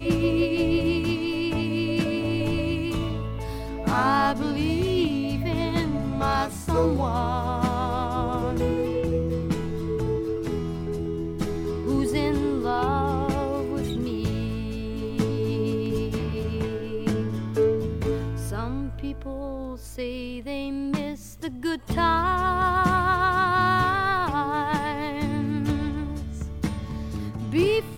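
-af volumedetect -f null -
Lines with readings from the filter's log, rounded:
mean_volume: -25.3 dB
max_volume: -8.8 dB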